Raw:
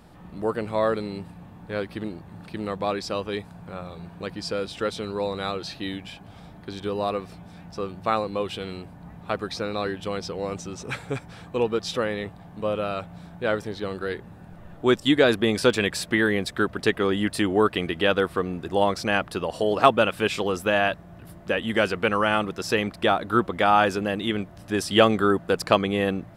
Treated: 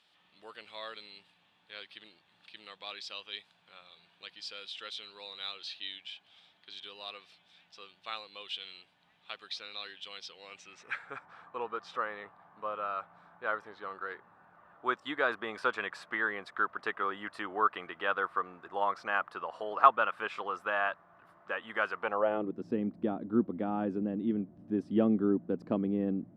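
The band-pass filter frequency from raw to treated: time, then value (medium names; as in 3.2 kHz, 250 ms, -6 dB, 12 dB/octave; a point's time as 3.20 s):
band-pass filter, Q 2.8
10.40 s 3.3 kHz
11.23 s 1.2 kHz
21.97 s 1.2 kHz
22.56 s 250 Hz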